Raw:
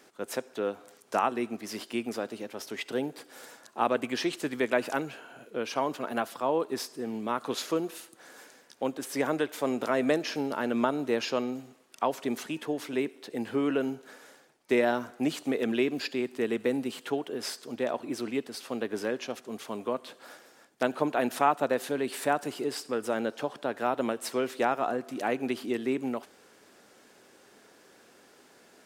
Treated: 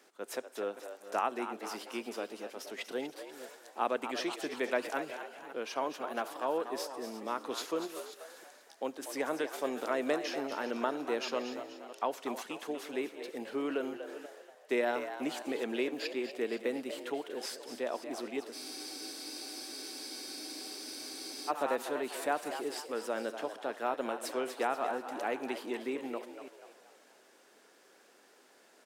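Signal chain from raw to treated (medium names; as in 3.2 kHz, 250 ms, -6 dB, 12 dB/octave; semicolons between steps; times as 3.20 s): chunks repeated in reverse 291 ms, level -14 dB; high-pass 290 Hz 12 dB/octave; on a send: frequency-shifting echo 241 ms, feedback 43%, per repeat +81 Hz, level -10 dB; on the sum: spectral freeze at 18.56 s, 2.93 s; trim -5 dB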